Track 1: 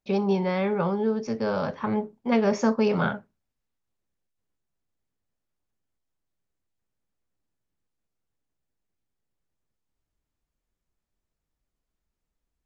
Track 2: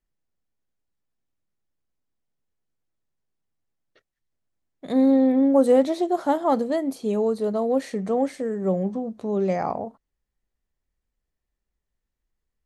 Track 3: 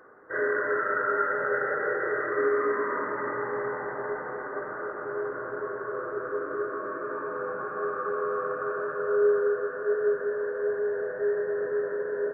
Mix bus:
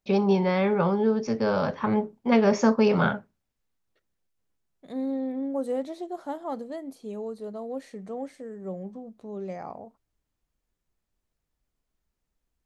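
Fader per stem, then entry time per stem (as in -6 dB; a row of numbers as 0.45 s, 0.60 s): +2.0 dB, -12.0 dB, mute; 0.00 s, 0.00 s, mute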